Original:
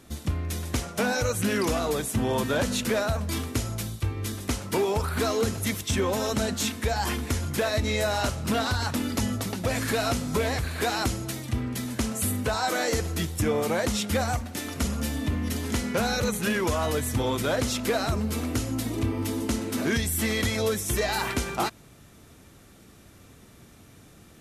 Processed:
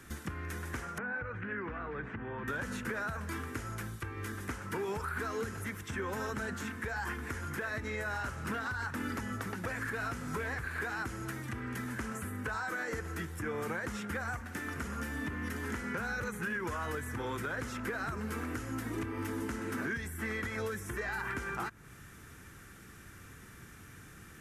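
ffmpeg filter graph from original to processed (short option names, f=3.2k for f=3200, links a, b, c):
-filter_complex "[0:a]asettb=1/sr,asplit=3[a][b][c];[a]atrim=end=0.984[d];[b]atrim=start=0.98:end=2.48,asetpts=PTS-STARTPTS,afade=t=in:d=0.004:c=qsin,afade=t=out:st=1.496:d=0.004:c=qsin,lowpass=f=2.3k:w=0.5412,lowpass=f=2.3k:w=1.3066,acompressor=threshold=-33dB:ratio=12:attack=3.2:release=140:knee=1:detection=peak[e];[c]atrim=start=2.476[f];[d][e]acrossfade=d=0.004:c1=hsin:c2=qsin[g];[g][f]acrossfade=d=0.004:c1=qsin:c2=hsin,equalizer=f=250:t=o:w=0.67:g=-4,equalizer=f=630:t=o:w=0.67:g=-10,equalizer=f=1.6k:t=o:w=0.67:g=10,equalizer=f=4k:t=o:w=0.67:g=-6,alimiter=limit=-22.5dB:level=0:latency=1:release=263,acrossover=split=240|1900[h][i][j];[h]acompressor=threshold=-42dB:ratio=4[k];[i]acompressor=threshold=-35dB:ratio=4[l];[j]acompressor=threshold=-51dB:ratio=4[m];[k][l][m]amix=inputs=3:normalize=0"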